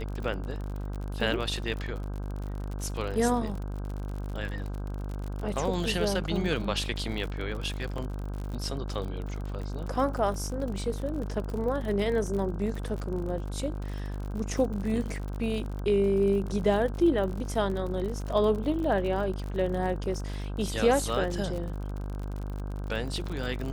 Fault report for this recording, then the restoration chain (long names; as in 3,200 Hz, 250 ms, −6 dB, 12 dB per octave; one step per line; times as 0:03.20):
mains buzz 50 Hz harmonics 32 −34 dBFS
surface crackle 49 per second −34 dBFS
0:07.98: drop-out 2.4 ms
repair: click removal
hum removal 50 Hz, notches 32
repair the gap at 0:07.98, 2.4 ms